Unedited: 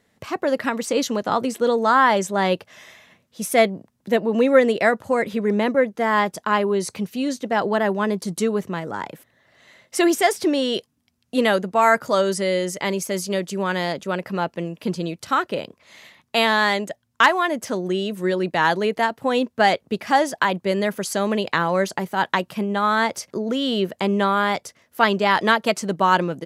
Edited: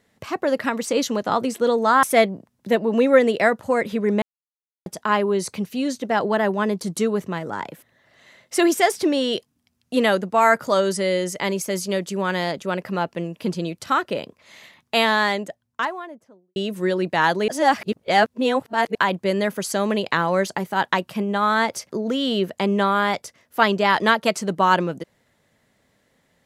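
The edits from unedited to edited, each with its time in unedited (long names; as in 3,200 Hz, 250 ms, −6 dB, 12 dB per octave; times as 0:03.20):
0:02.03–0:03.44: remove
0:05.63–0:06.27: silence
0:16.42–0:17.97: fade out and dull
0:18.89–0:20.36: reverse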